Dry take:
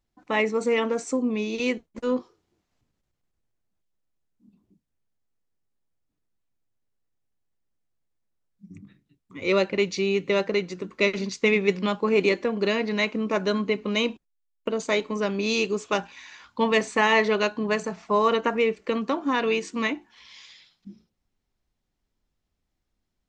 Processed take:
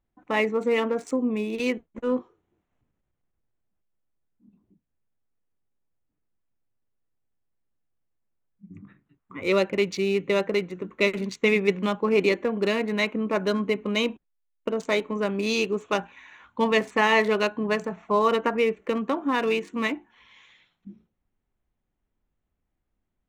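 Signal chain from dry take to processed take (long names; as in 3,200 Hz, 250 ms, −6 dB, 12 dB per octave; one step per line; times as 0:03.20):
adaptive Wiener filter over 9 samples
0:08.77–0:09.42: parametric band 1,200 Hz +11.5 dB 1.6 octaves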